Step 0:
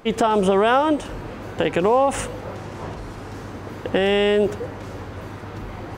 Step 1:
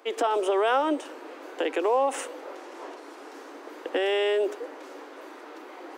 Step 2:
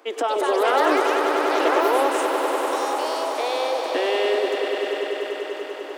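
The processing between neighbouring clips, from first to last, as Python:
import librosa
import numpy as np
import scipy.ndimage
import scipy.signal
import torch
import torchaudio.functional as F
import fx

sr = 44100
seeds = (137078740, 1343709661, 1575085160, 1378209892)

y1 = scipy.signal.sosfilt(scipy.signal.butter(12, 280.0, 'highpass', fs=sr, output='sos'), x)
y1 = y1 * librosa.db_to_amplitude(-6.0)
y2 = fx.echo_pitch(y1, sr, ms=250, semitones=4, count=3, db_per_echo=-3.0)
y2 = fx.echo_swell(y2, sr, ms=98, loudest=5, wet_db=-9)
y2 = y2 * librosa.db_to_amplitude(1.5)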